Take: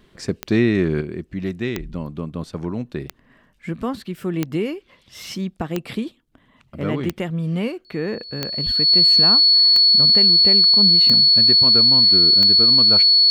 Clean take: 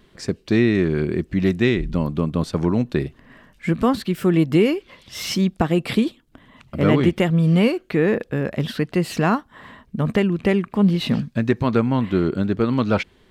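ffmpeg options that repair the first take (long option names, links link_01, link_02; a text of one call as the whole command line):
ffmpeg -i in.wav -filter_complex "[0:a]adeclick=threshold=4,bandreject=frequency=4400:width=30,asplit=3[link_01][link_02][link_03];[link_01]afade=type=out:start_time=8.65:duration=0.02[link_04];[link_02]highpass=frequency=140:width=0.5412,highpass=frequency=140:width=1.3066,afade=type=in:start_time=8.65:duration=0.02,afade=type=out:start_time=8.77:duration=0.02[link_05];[link_03]afade=type=in:start_time=8.77:duration=0.02[link_06];[link_04][link_05][link_06]amix=inputs=3:normalize=0,asetnsamples=nb_out_samples=441:pad=0,asendcmd='1.01 volume volume 7dB',volume=0dB" out.wav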